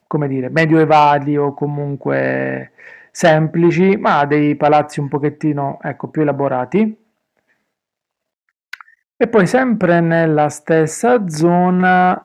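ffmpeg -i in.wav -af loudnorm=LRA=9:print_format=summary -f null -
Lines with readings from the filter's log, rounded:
Input Integrated:    -14.5 LUFS
Input True Peak:      -1.8 dBTP
Input LRA:             6.6 LU
Input Threshold:     -25.2 LUFS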